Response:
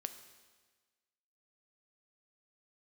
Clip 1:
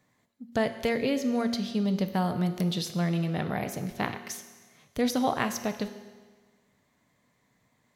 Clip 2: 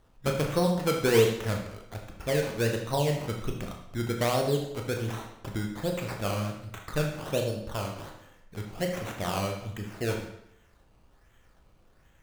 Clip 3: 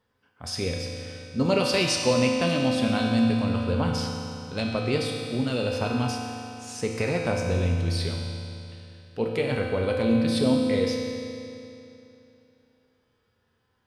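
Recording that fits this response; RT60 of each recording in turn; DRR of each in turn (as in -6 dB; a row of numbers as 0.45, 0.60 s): 1; 1.4, 0.75, 2.9 s; 8.5, 1.0, -1.5 dB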